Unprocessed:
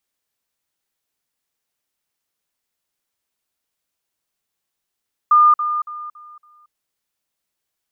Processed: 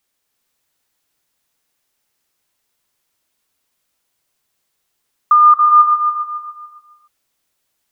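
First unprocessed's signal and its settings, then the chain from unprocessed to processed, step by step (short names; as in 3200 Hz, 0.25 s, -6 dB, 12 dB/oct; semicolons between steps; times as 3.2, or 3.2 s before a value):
level ladder 1210 Hz -8 dBFS, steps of -10 dB, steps 5, 0.23 s 0.05 s
in parallel at +1.5 dB: compressor, threshold -21 dBFS; on the sum: non-linear reverb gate 0.43 s rising, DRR 2 dB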